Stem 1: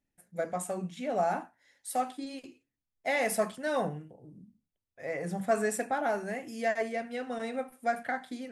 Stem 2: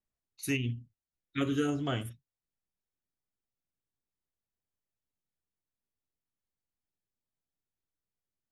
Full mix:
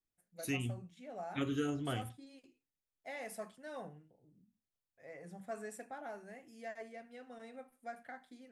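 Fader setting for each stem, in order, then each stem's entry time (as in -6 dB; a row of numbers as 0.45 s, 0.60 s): -16.0 dB, -5.5 dB; 0.00 s, 0.00 s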